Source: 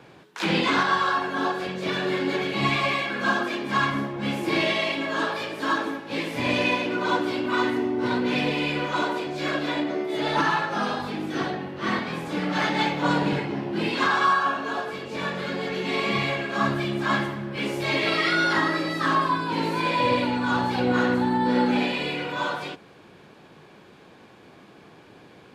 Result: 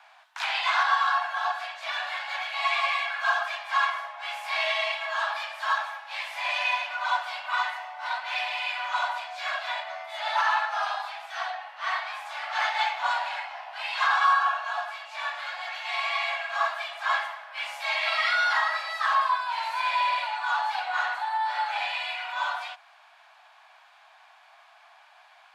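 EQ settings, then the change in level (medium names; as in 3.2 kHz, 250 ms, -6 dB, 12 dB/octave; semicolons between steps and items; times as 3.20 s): steep high-pass 650 Hz 96 dB/octave; treble shelf 4.9 kHz -6 dB; 0.0 dB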